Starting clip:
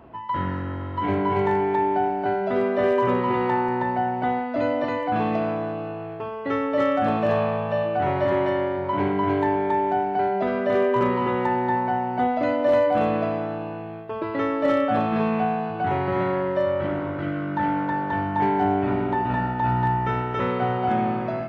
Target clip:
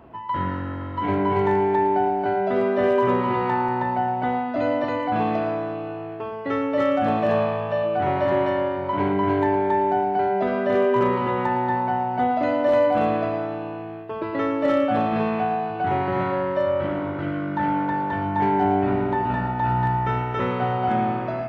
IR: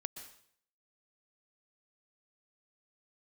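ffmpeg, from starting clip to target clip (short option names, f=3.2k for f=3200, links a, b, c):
-filter_complex "[0:a]asplit=2[a][b];[1:a]atrim=start_sample=2205,adelay=112[c];[b][c]afir=irnorm=-1:irlink=0,volume=-9dB[d];[a][d]amix=inputs=2:normalize=0"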